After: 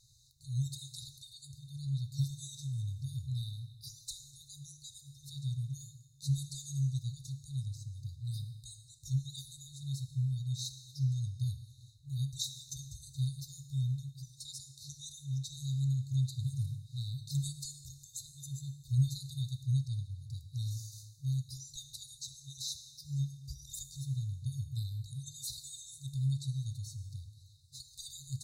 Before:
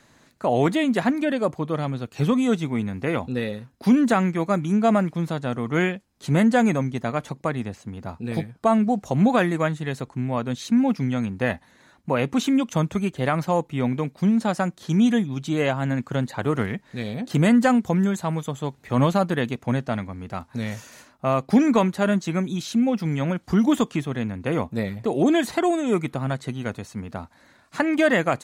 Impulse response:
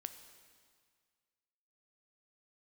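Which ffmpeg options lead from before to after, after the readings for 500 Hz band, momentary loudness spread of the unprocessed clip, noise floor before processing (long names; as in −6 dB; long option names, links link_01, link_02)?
below −40 dB, 11 LU, −57 dBFS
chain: -filter_complex "[1:a]atrim=start_sample=2205,asetrate=57330,aresample=44100[link_01];[0:a][link_01]afir=irnorm=-1:irlink=0,afftfilt=real='re*(1-between(b*sr/4096,140,3600))':imag='im*(1-between(b*sr/4096,140,3600))':win_size=4096:overlap=0.75,volume=3dB"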